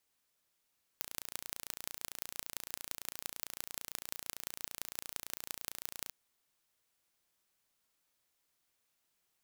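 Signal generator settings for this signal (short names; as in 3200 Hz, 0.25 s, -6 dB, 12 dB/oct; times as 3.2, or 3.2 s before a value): pulse train 28.9/s, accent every 5, -9.5 dBFS 5.12 s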